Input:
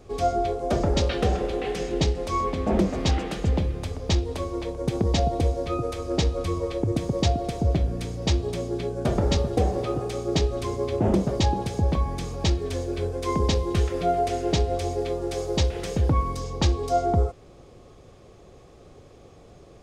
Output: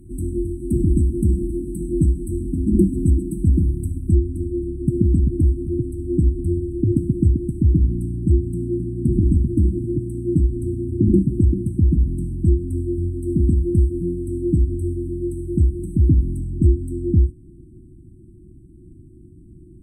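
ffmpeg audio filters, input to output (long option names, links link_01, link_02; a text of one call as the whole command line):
ffmpeg -i in.wav -af "asetnsamples=nb_out_samples=441:pad=0,asendcmd='4.11 highshelf g -2.5',highshelf=frequency=6500:gain=12,afftfilt=real='re*(1-between(b*sr/4096,370,7800))':imag='im*(1-between(b*sr/4096,370,7800))':win_size=4096:overlap=0.75,aemphasis=mode=reproduction:type=cd,volume=7dB" out.wav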